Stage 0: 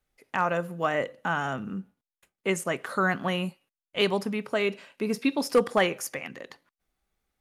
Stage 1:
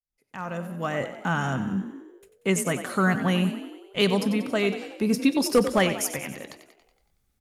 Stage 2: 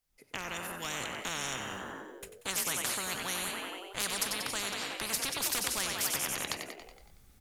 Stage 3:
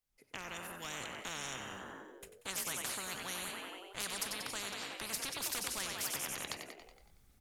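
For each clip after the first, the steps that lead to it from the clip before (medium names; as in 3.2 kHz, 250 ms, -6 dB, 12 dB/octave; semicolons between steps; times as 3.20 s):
fade-in on the opening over 1.30 s; tone controls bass +10 dB, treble +7 dB; frequency-shifting echo 93 ms, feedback 58%, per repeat +40 Hz, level -11.5 dB
spectrum-flattening compressor 10:1; trim -5.5 dB
trim -6 dB; Nellymoser 88 kbps 44.1 kHz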